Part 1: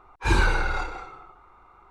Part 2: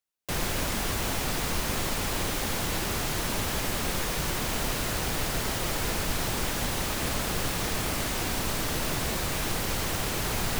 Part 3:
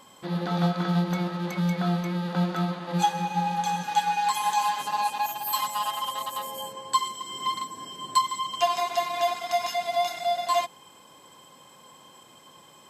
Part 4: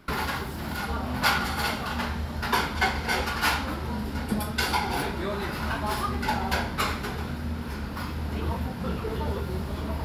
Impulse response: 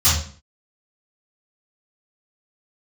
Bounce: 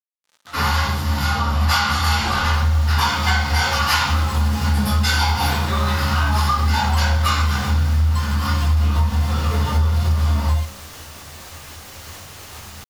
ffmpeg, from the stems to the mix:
-filter_complex "[0:a]adelay=1950,volume=-3.5dB[a];[1:a]alimiter=limit=-21dB:level=0:latency=1:release=167,adelay=2250,volume=-6.5dB,asplit=2[b][c];[c]volume=-22dB[d];[2:a]highpass=f=820:w=0.5412,highpass=f=820:w=1.3066,acrusher=bits=4:mix=0:aa=0.5,volume=-6.5dB[e];[3:a]highpass=94,adelay=450,volume=-3.5dB,asplit=2[f][g];[g]volume=-4.5dB[h];[4:a]atrim=start_sample=2205[i];[d][h]amix=inputs=2:normalize=0[j];[j][i]afir=irnorm=-1:irlink=0[k];[a][b][e][f][k]amix=inputs=5:normalize=0,lowshelf=f=290:g=-11,acompressor=threshold=-14dB:ratio=6"

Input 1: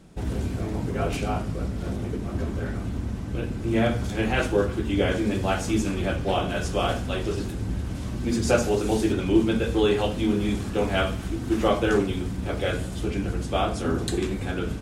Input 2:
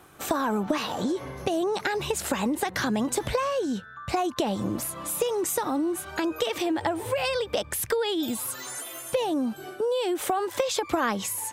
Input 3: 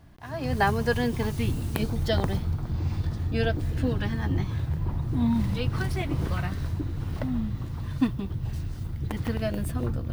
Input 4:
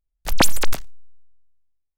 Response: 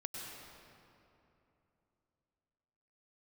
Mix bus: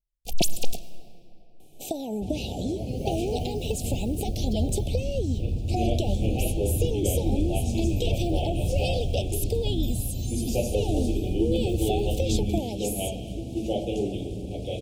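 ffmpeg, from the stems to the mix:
-filter_complex "[0:a]adelay=2050,volume=-9dB,asplit=2[a][b];[b]volume=-4dB[c];[1:a]adelay=1600,volume=-3.5dB[d];[2:a]asubboost=boost=6.5:cutoff=86,adelay=2450,volume=-7.5dB[e];[3:a]asplit=2[f][g];[g]adelay=2.6,afreqshift=-2.5[h];[f][h]amix=inputs=2:normalize=1,volume=-4.5dB,asplit=2[i][j];[j]volume=-12dB[k];[4:a]atrim=start_sample=2205[l];[c][k]amix=inputs=2:normalize=0[m];[m][l]afir=irnorm=-1:irlink=0[n];[a][d][e][i][n]amix=inputs=5:normalize=0,asuperstop=centerf=1400:order=12:qfactor=0.8"

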